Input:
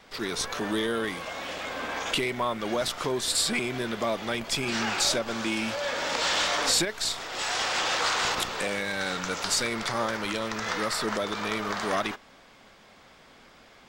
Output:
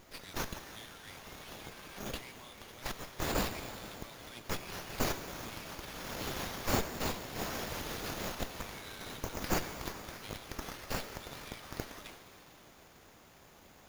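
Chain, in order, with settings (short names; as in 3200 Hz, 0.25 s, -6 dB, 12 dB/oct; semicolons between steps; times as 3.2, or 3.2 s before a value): reverb removal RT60 0.52 s; in parallel at 0 dB: negative-ratio compressor -33 dBFS, ratio -1; on the sum: requantised 8-bit, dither triangular; band-pass 7100 Hz, Q 9.3; plate-style reverb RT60 3.7 s, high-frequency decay 0.95×, DRR 6.5 dB; running maximum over 5 samples; gain +5.5 dB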